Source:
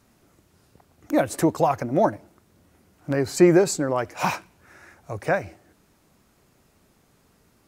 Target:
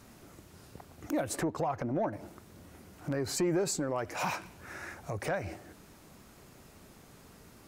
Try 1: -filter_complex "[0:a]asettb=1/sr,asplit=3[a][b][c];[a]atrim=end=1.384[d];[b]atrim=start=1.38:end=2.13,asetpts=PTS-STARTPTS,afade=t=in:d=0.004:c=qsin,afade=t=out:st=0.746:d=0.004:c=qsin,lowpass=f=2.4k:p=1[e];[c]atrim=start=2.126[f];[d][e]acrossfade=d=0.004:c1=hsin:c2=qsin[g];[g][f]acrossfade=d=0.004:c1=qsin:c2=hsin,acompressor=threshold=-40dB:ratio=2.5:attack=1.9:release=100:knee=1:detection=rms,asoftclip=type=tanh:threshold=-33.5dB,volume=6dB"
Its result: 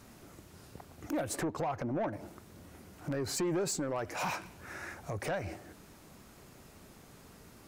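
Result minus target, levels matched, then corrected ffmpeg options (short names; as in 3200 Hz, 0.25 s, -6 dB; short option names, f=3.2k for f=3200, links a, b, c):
soft clip: distortion +10 dB
-filter_complex "[0:a]asettb=1/sr,asplit=3[a][b][c];[a]atrim=end=1.384[d];[b]atrim=start=1.38:end=2.13,asetpts=PTS-STARTPTS,afade=t=in:d=0.004:c=qsin,afade=t=out:st=0.746:d=0.004:c=qsin,lowpass=f=2.4k:p=1[e];[c]atrim=start=2.126[f];[d][e]acrossfade=d=0.004:c1=hsin:c2=qsin[g];[g][f]acrossfade=d=0.004:c1=qsin:c2=hsin,acompressor=threshold=-40dB:ratio=2.5:attack=1.9:release=100:knee=1:detection=rms,asoftclip=type=tanh:threshold=-26.5dB,volume=6dB"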